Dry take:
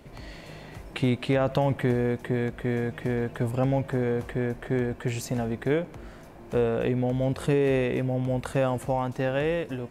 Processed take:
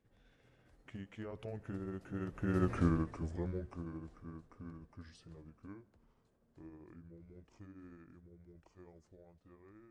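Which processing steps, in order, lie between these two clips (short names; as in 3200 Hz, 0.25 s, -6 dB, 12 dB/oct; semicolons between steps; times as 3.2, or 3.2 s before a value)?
delay-line pitch shifter -5.5 st; Doppler pass-by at 2.74, 28 m/s, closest 3.2 m; gain +2.5 dB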